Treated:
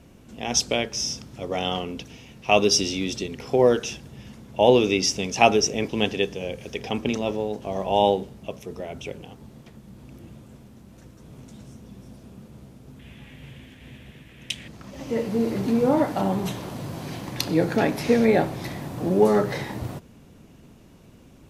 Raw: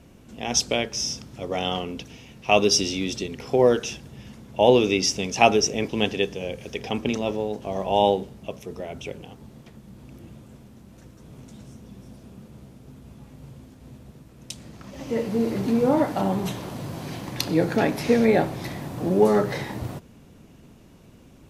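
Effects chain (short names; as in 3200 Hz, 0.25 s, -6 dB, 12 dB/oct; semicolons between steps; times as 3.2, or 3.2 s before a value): 12.99–14.68 band shelf 2400 Hz +14.5 dB 1.3 oct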